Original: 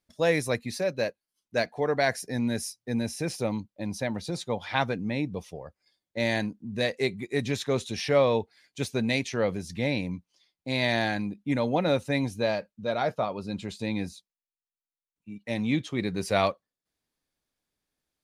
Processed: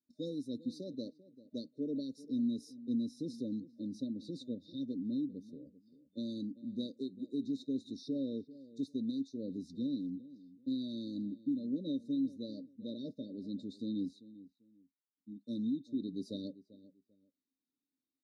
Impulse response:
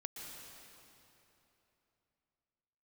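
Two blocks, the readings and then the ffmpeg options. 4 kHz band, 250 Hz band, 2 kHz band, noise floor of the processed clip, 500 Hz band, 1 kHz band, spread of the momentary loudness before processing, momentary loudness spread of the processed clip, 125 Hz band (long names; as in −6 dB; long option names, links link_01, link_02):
−16.5 dB, −4.5 dB, below −40 dB, below −85 dBFS, −19.5 dB, below −40 dB, 10 LU, 11 LU, −17.0 dB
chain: -filter_complex "[0:a]asplit=3[link_01][link_02][link_03];[link_01]bandpass=frequency=270:width_type=q:width=8,volume=0dB[link_04];[link_02]bandpass=frequency=2290:width_type=q:width=8,volume=-6dB[link_05];[link_03]bandpass=frequency=3010:width_type=q:width=8,volume=-9dB[link_06];[link_04][link_05][link_06]amix=inputs=3:normalize=0,alimiter=level_in=7.5dB:limit=-24dB:level=0:latency=1:release=405,volume=-7.5dB,afftfilt=real='re*(1-between(b*sr/4096,620,3600))':imag='im*(1-between(b*sr/4096,620,3600))':win_size=4096:overlap=0.75,asplit=2[link_07][link_08];[link_08]adelay=393,lowpass=frequency=1500:poles=1,volume=-17dB,asplit=2[link_09][link_10];[link_10]adelay=393,lowpass=frequency=1500:poles=1,volume=0.24[link_11];[link_07][link_09][link_11]amix=inputs=3:normalize=0,volume=5dB"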